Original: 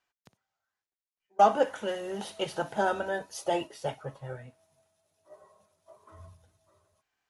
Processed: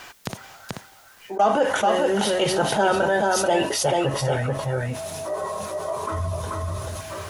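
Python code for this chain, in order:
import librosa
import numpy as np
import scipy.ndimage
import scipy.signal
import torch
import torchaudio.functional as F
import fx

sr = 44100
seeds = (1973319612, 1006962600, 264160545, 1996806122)

y = x + 10.0 ** (-6.0 / 20.0) * np.pad(x, (int(435 * sr / 1000.0), 0))[:len(x)]
y = fx.env_flatten(y, sr, amount_pct=70)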